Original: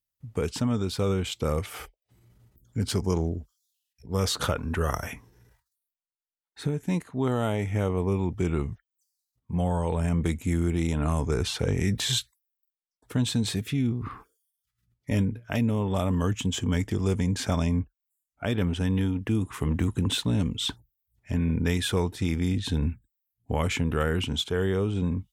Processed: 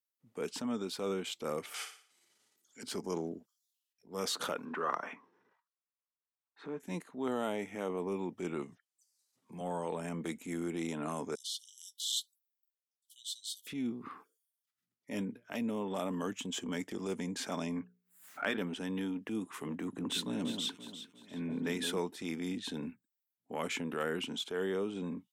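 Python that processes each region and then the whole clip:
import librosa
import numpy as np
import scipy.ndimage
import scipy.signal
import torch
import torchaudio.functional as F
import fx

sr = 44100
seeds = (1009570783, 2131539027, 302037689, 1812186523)

y = fx.chain(x, sr, fx.weighting(curve='ITU-R 468'),
    fx.room_flutter(wall_m=10.0, rt60_s=0.48), at=(1.74, 2.83))
y = fx.chain(y, sr, fx.block_float(bits=7),
    fx.bandpass_edges(low_hz=180.0, high_hz=2800.0),
    fx.peak_eq(hz=1100.0, db=10.0, octaves=0.52), at=(4.65, 6.8))
y = fx.chain(y, sr, fx.lowpass(hz=9300.0, slope=12),
    fx.high_shelf(hz=3500.0, db=11.5),
    fx.band_squash(depth_pct=70), at=(8.62, 9.61))
y = fx.chain(y, sr, fx.brickwall_highpass(low_hz=2900.0),
    fx.high_shelf(hz=9700.0, db=3.5), at=(11.35, 13.67))
y = fx.chain(y, sr, fx.peak_eq(hz=1600.0, db=11.5, octaves=1.4),
    fx.hum_notches(base_hz=60, count=8),
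    fx.pre_swell(db_per_s=120.0), at=(17.76, 18.57))
y = fx.chain(y, sr, fx.echo_alternate(ms=175, hz=1400.0, feedback_pct=68, wet_db=-5.5),
    fx.band_widen(depth_pct=40), at=(19.75, 21.98))
y = scipy.signal.sosfilt(scipy.signal.butter(4, 210.0, 'highpass', fs=sr, output='sos'), y)
y = fx.transient(y, sr, attack_db=-6, sustain_db=-1)
y = y * librosa.db_to_amplitude(-6.0)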